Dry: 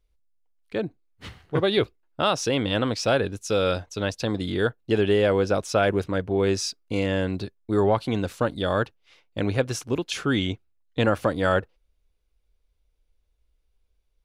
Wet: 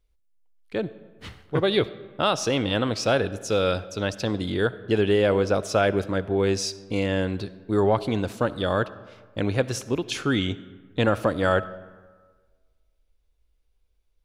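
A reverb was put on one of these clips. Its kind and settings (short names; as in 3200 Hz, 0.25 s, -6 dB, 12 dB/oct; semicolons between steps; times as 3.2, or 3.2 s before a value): digital reverb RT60 1.5 s, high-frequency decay 0.55×, pre-delay 20 ms, DRR 16 dB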